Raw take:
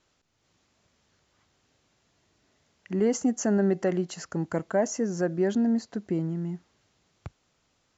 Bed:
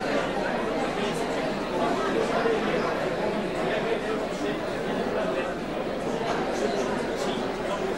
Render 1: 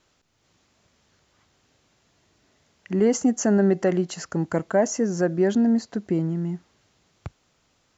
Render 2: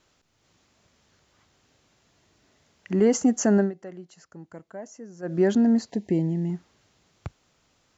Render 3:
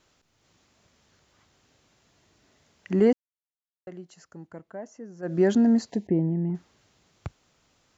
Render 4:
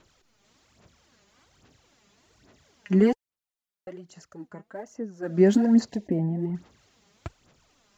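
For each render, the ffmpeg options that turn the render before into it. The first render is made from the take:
-af "volume=1.68"
-filter_complex "[0:a]asettb=1/sr,asplit=3[s0][s1][s2];[s0]atrim=end=5.904[s3];[s1]atrim=start=5.9:end=6.5,asetpts=PTS-STARTPTS,afade=t=in:d=0.004:c=qsin,afade=t=out:st=0.596:d=0.004:c=qsin,asuperstop=centerf=1300:order=12:qfactor=1.8[s4];[s2]atrim=start=6.496[s5];[s3][s4]acrossfade=d=0.004:c1=hsin:c2=qsin[s6];[s6][s5]acrossfade=d=0.004:c1=qsin:c2=hsin,asplit=3[s7][s8][s9];[s7]atrim=end=3.72,asetpts=PTS-STARTPTS,afade=t=out:st=3.58:d=0.14:silence=0.11885[s10];[s8]atrim=start=3.72:end=5.22,asetpts=PTS-STARTPTS,volume=0.119[s11];[s9]atrim=start=5.22,asetpts=PTS-STARTPTS,afade=t=in:d=0.14:silence=0.11885[s12];[s10][s11][s12]concat=n=3:v=0:a=1"
-filter_complex "[0:a]asettb=1/sr,asplit=3[s0][s1][s2];[s0]atrim=end=4.474[s3];[s1]atrim=start=4.47:end=5.23,asetpts=PTS-STARTPTS,afade=t=in:d=0.004:c=qsin,afade=t=out:st=0.756:d=0.004:c=qsin,aemphasis=mode=reproduction:type=50fm[s4];[s2]atrim=start=5.226[s5];[s3][s4]acrossfade=d=0.004:c1=hsin:c2=qsin[s6];[s6][s5]acrossfade=d=0.004:c1=qsin:c2=hsin,asettb=1/sr,asplit=3[s7][s8][s9];[s7]atrim=end=6.074[s10];[s8]atrim=start=6.07:end=6.55,asetpts=PTS-STARTPTS,afade=t=in:d=0.004:c=qsin,afade=t=out:st=0.476:d=0.004:c=qsin,lowpass=1500[s11];[s9]atrim=start=6.546[s12];[s10][s11]acrossfade=d=0.004:c1=hsin:c2=qsin[s13];[s13][s12]acrossfade=d=0.004:c1=qsin:c2=hsin,asplit=3[s14][s15][s16];[s14]atrim=end=3.13,asetpts=PTS-STARTPTS,afade=t=out:st=3.126:d=0.004:c=hsin[s17];[s15]atrim=start=3.13:end=3.87,asetpts=PTS-STARTPTS,volume=0[s18];[s16]atrim=start=3.87,asetpts=PTS-STARTPTS,afade=t=in:d=0.004:c=hsin[s19];[s17][s18][s19]concat=n=3:v=0:a=1"
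-af "aphaser=in_gain=1:out_gain=1:delay=5:decay=0.63:speed=1.2:type=sinusoidal"

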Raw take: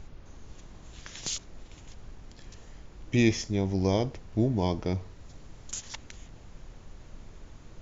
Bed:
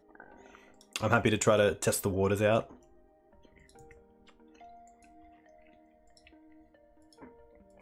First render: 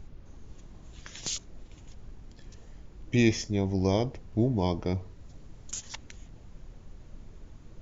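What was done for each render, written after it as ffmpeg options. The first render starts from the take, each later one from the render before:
-af "afftdn=nr=6:nf=-51"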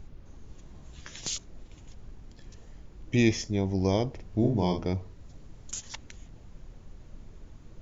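-filter_complex "[0:a]asettb=1/sr,asplit=3[s0][s1][s2];[s0]atrim=end=0.644[s3];[s1]atrim=start=0.64:end=1.16,asetpts=PTS-STARTPTS,afade=t=in:d=0.004:c=qsin,afade=t=out:st=0.516:d=0.004:c=qsin,asplit=2[s4][s5];[s5]adelay=14,volume=0.447[s6];[s4][s6]amix=inputs=2:normalize=0,atrim=end_sample=22932[s7];[s2]atrim=start=1.156[s8];[s3][s7]acrossfade=d=0.004:c1=hsin:c2=qsin[s9];[s9][s8]acrossfade=d=0.004:c1=qsin:c2=hsin,asettb=1/sr,asplit=3[s10][s11][s12];[s10]atrim=end=4.134[s13];[s11]atrim=start=4.13:end=4.87,asetpts=PTS-STARTPTS,afade=t=in:d=0.004:c=qsin,afade=t=out:st=0.736:d=0.004:c=qsin,asplit=2[s14][s15];[s15]adelay=50,volume=0.531[s16];[s14][s16]amix=inputs=2:normalize=0,atrim=end_sample=32634[s17];[s12]atrim=start=4.866[s18];[s13][s17]acrossfade=d=0.004:c1=hsin:c2=qsin[s19];[s19][s18]acrossfade=d=0.004:c1=qsin:c2=hsin"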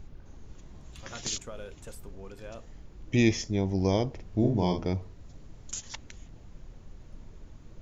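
-filter_complex "[1:a]volume=0.119[s0];[0:a][s0]amix=inputs=2:normalize=0"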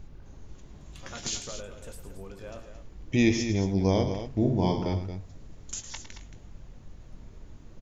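-filter_complex "[0:a]asplit=2[s0][s1];[s1]adelay=21,volume=0.282[s2];[s0][s2]amix=inputs=2:normalize=0,aecho=1:1:107.9|224.5:0.282|0.316"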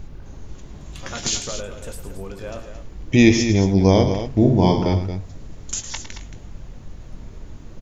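-af "volume=2.99"

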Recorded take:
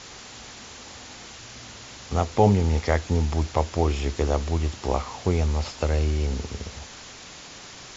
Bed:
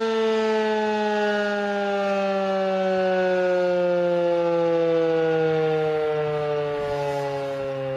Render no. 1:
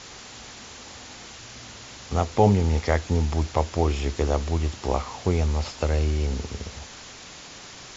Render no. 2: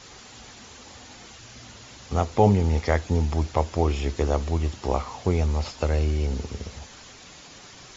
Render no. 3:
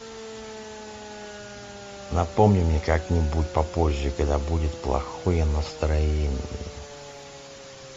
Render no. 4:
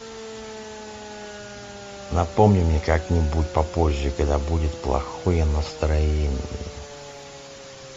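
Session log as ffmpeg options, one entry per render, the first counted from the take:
-af anull
-af "afftdn=nr=6:nf=-43"
-filter_complex "[1:a]volume=0.126[s0];[0:a][s0]amix=inputs=2:normalize=0"
-af "volume=1.26"

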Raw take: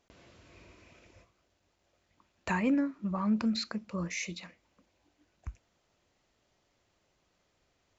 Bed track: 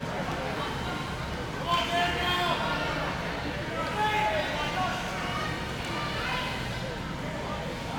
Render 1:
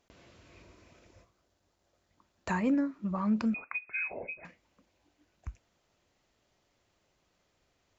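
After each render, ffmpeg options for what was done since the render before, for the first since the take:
-filter_complex "[0:a]asettb=1/sr,asplit=3[s0][s1][s2];[s0]atrim=end=0.624[s3];[s1]atrim=start=0.62:end=2.91,asetpts=PTS-STARTPTS,afade=t=in:d=0.004:c=qsin,afade=t=out:st=2.286:d=0.004:c=qsin,equalizer=f=2500:t=o:w=0.77:g=-5.5[s4];[s2]atrim=start=2.906[s5];[s3][s4]acrossfade=d=0.004:c1=hsin:c2=qsin[s6];[s6][s5]acrossfade=d=0.004:c1=qsin:c2=hsin,asettb=1/sr,asplit=3[s7][s8][s9];[s7]atrim=end=3.544[s10];[s8]atrim=start=3.54:end=4.45,asetpts=PTS-STARTPTS,afade=t=in:d=0.004:c=qsin,afade=t=out:st=0.906:d=0.004:c=qsin,lowpass=f=2300:t=q:w=0.5098,lowpass=f=2300:t=q:w=0.6013,lowpass=f=2300:t=q:w=0.9,lowpass=f=2300:t=q:w=2.563,afreqshift=-2700[s11];[s9]atrim=start=4.446[s12];[s10][s11]acrossfade=d=0.004:c1=hsin:c2=qsin[s13];[s13][s12]acrossfade=d=0.004:c1=qsin:c2=hsin"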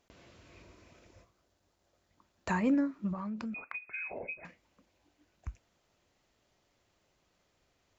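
-filter_complex "[0:a]asettb=1/sr,asplit=3[s0][s1][s2];[s0]atrim=end=3.134[s3];[s1]atrim=start=3.13:end=4.28,asetpts=PTS-STARTPTS,afade=t=in:d=0.004:c=qsin,afade=t=out:st=1.146:d=0.004:c=qsin,acompressor=threshold=0.0178:ratio=10:attack=3.2:release=140:knee=1:detection=peak[s4];[s2]atrim=start=4.276[s5];[s3][s4]acrossfade=d=0.004:c1=hsin:c2=qsin[s6];[s6][s5]acrossfade=d=0.004:c1=qsin:c2=hsin"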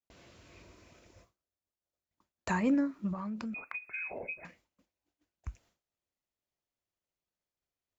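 -af "highshelf=f=5600:g=5,agate=range=0.0224:threshold=0.00112:ratio=3:detection=peak"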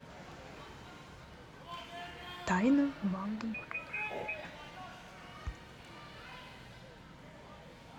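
-filter_complex "[1:a]volume=0.112[s0];[0:a][s0]amix=inputs=2:normalize=0"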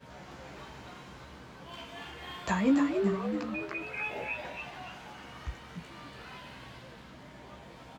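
-filter_complex "[0:a]asplit=2[s0][s1];[s1]adelay=15,volume=0.708[s2];[s0][s2]amix=inputs=2:normalize=0,asplit=2[s3][s4];[s4]asplit=4[s5][s6][s7][s8];[s5]adelay=284,afreqshift=110,volume=0.501[s9];[s6]adelay=568,afreqshift=220,volume=0.176[s10];[s7]adelay=852,afreqshift=330,volume=0.0617[s11];[s8]adelay=1136,afreqshift=440,volume=0.0214[s12];[s9][s10][s11][s12]amix=inputs=4:normalize=0[s13];[s3][s13]amix=inputs=2:normalize=0"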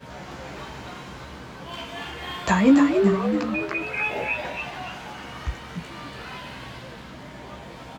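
-af "volume=2.99"

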